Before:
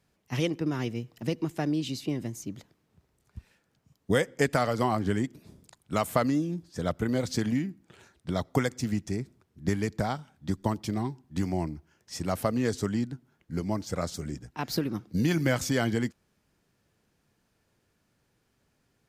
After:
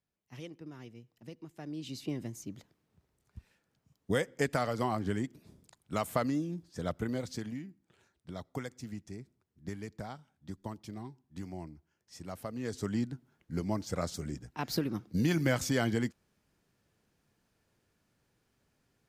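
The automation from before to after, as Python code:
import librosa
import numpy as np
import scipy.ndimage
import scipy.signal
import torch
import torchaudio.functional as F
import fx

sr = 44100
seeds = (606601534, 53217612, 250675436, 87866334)

y = fx.gain(x, sr, db=fx.line((1.53, -17.5), (2.02, -5.5), (7.02, -5.5), (7.57, -13.0), (12.5, -13.0), (12.98, -3.0)))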